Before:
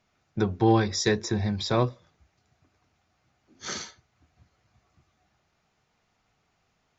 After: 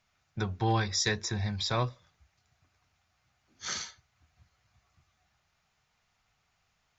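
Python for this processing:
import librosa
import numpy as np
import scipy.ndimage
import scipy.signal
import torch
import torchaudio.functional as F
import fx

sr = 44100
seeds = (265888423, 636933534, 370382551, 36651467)

y = fx.peak_eq(x, sr, hz=320.0, db=-12.0, octaves=2.1)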